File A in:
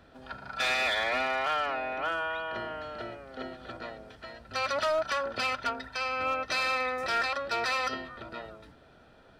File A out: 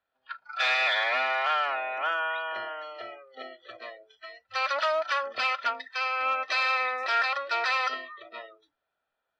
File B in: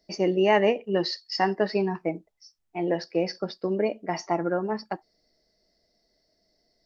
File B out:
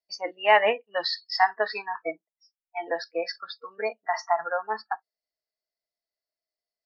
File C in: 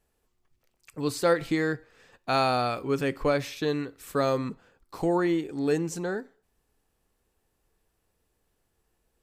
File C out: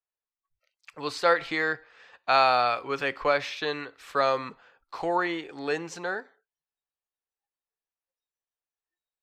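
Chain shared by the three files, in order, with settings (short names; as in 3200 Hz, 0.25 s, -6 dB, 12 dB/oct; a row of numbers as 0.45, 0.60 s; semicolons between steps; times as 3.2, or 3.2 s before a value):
spectral noise reduction 26 dB; three-band isolator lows -18 dB, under 590 Hz, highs -22 dB, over 5100 Hz; match loudness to -27 LUFS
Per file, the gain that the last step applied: +4.0, +6.0, +6.0 dB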